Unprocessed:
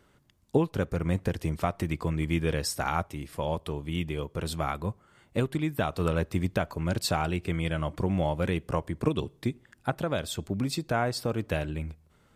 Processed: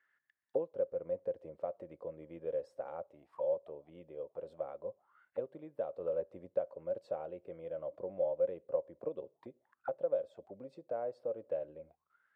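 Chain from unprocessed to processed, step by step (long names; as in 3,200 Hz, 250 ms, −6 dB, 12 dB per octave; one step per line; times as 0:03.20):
envelope filter 540–1,800 Hz, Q 14, down, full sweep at −29 dBFS
level +4.5 dB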